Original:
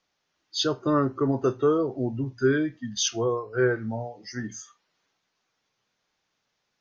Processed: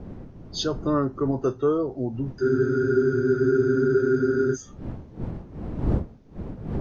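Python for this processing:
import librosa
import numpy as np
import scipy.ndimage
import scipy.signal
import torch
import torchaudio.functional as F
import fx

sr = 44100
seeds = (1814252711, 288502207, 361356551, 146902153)

y = fx.dmg_wind(x, sr, seeds[0], corner_hz=210.0, level_db=-31.0)
y = fx.dynamic_eq(y, sr, hz=2400.0, q=0.78, threshold_db=-44.0, ratio=4.0, max_db=-5)
y = fx.spec_freeze(y, sr, seeds[1], at_s=2.43, hold_s=2.11)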